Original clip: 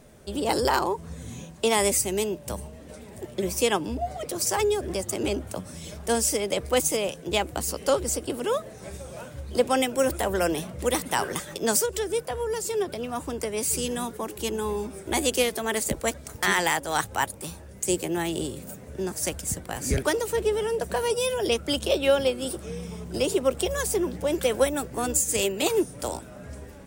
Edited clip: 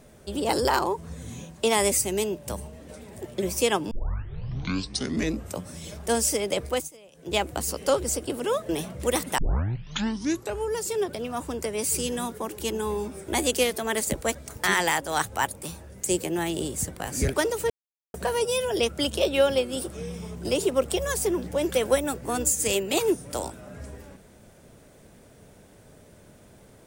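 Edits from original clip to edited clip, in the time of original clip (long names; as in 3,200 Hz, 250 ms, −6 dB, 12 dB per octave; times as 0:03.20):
0:03.91: tape start 1.74 s
0:06.65–0:07.37: duck −23.5 dB, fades 0.26 s
0:08.69–0:10.48: remove
0:11.17: tape start 1.34 s
0:18.53–0:19.43: remove
0:20.39–0:20.83: silence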